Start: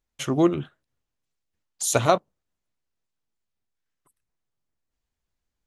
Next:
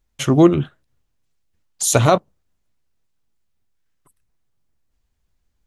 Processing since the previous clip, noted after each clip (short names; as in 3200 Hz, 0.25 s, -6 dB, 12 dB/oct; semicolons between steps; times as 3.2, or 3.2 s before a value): low shelf 170 Hz +8 dB; maximiser +7.5 dB; gain -1 dB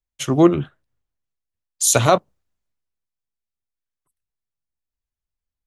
low shelf 290 Hz -6 dB; three-band expander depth 40%; gain -1 dB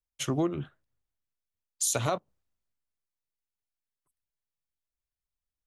compressor 6:1, threshold -19 dBFS, peak gain reduction 11.5 dB; gain -6 dB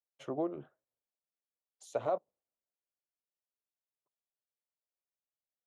band-pass 580 Hz, Q 1.9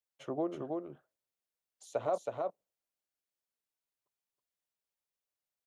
echo 0.322 s -3.5 dB